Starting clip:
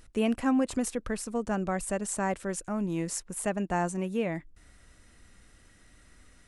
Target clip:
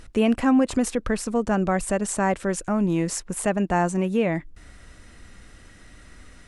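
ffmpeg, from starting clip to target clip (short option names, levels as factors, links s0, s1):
-filter_complex "[0:a]highshelf=f=8600:g=-9.5,asplit=2[s0][s1];[s1]alimiter=level_in=1.41:limit=0.0631:level=0:latency=1:release=175,volume=0.708,volume=1.06[s2];[s0][s2]amix=inputs=2:normalize=0,volume=1.58"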